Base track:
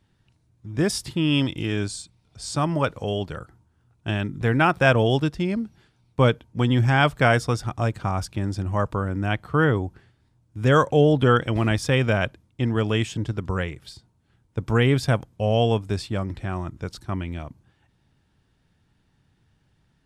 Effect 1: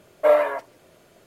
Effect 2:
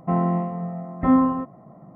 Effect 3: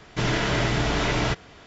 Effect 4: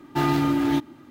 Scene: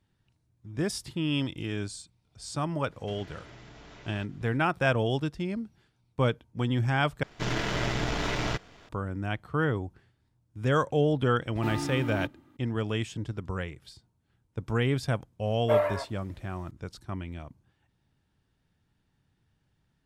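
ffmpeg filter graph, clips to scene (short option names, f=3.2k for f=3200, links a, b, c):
-filter_complex "[3:a]asplit=2[a][b];[0:a]volume=-7.5dB[c];[a]acompressor=threshold=-31dB:ratio=6:attack=3.2:release=140:knee=1:detection=peak[d];[b]aeval=exprs='if(lt(val(0),0),0.447*val(0),val(0))':c=same[e];[4:a]equalizer=f=5.3k:t=o:w=0.77:g=-3.5[f];[c]asplit=2[g][h];[g]atrim=end=7.234[i];[e]atrim=end=1.66,asetpts=PTS-STARTPTS,volume=-3.5dB[j];[h]atrim=start=8.886[k];[d]atrim=end=1.66,asetpts=PTS-STARTPTS,volume=-15.5dB,afade=t=in:d=0.004:c=hsin,afade=t=out:st=1.656:d=0.004:c=hsin,adelay=2910[l];[f]atrim=end=1.1,asetpts=PTS-STARTPTS,volume=-11.5dB,afade=t=in:d=0.004:c=hsin,afade=t=out:st=1.096:d=0.004:c=hsin,adelay=11470[m];[1:a]atrim=end=1.26,asetpts=PTS-STARTPTS,volume=-7.5dB,afade=t=in:d=0.004:c=hsin,afade=t=out:st=1.256:d=0.004:c=hsin,adelay=15450[n];[i][j]acrossfade=d=0.004:c1=hsin:c2=hsin[o];[o][k]acrossfade=d=0.004:c1=hsin:c2=hsin[p];[p][l][m][n]amix=inputs=4:normalize=0"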